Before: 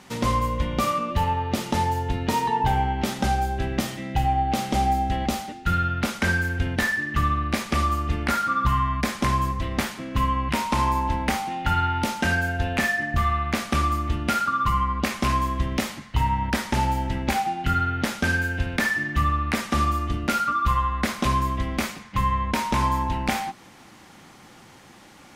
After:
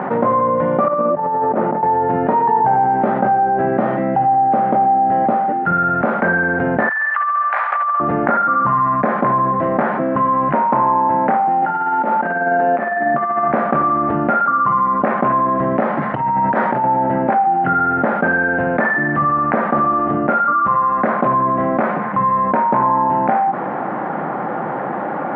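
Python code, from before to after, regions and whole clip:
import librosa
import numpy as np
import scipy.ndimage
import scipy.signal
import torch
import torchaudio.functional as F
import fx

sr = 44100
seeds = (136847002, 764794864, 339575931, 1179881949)

y = fx.chain(x, sr, fx.over_compress(threshold_db=-28.0, ratio=-0.5),
    fx.highpass(hz=150.0, slope=12),
    fx.spacing_loss(db_at_10k=28), at=(0.88, 1.83))
y = fx.chain(y, sr, fx.highpass(hz=1000.0, slope=24),
    fx.over_compress(threshold_db=-29.0, ratio=-0.5), at=(6.89, 8.0))
y = fx.chain(y, sr, fx.highpass(hz=180.0, slope=24),
    fx.over_compress(threshold_db=-30.0, ratio=-0.5), at=(11.62, 13.48))
y = fx.chain(y, sr, fx.over_compress(threshold_db=-26.0, ratio=-0.5),
    fx.high_shelf(hz=3800.0, db=9.0), at=(15.97, 16.84))
y = scipy.signal.sosfilt(scipy.signal.ellip(3, 1.0, 60, [150.0, 1600.0], 'bandpass', fs=sr, output='sos'), y)
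y = fx.peak_eq(y, sr, hz=660.0, db=11.0, octaves=1.4)
y = fx.env_flatten(y, sr, amount_pct=70)
y = y * 10.0 ** (-1.0 / 20.0)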